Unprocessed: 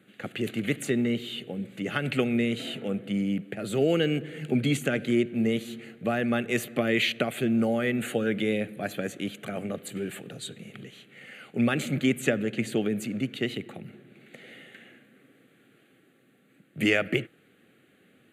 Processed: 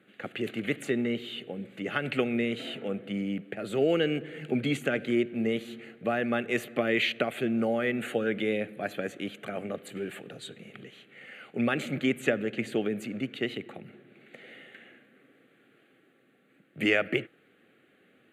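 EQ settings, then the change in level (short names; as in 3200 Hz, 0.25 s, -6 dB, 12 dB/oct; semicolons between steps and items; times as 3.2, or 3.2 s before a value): tone controls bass -7 dB, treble -9 dB; 0.0 dB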